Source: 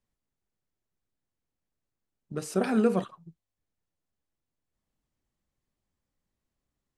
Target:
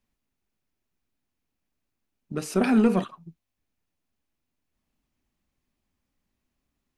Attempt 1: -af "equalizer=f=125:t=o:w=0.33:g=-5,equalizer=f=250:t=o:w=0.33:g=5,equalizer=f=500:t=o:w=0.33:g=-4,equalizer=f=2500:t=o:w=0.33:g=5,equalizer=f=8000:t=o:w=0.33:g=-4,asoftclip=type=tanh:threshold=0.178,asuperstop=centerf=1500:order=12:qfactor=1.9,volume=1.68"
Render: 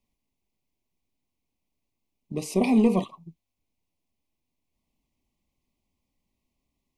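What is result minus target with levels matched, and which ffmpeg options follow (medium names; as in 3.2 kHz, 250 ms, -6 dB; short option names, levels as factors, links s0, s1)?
2 kHz band -4.0 dB
-af "equalizer=f=125:t=o:w=0.33:g=-5,equalizer=f=250:t=o:w=0.33:g=5,equalizer=f=500:t=o:w=0.33:g=-4,equalizer=f=2500:t=o:w=0.33:g=5,equalizer=f=8000:t=o:w=0.33:g=-4,asoftclip=type=tanh:threshold=0.178,volume=1.68"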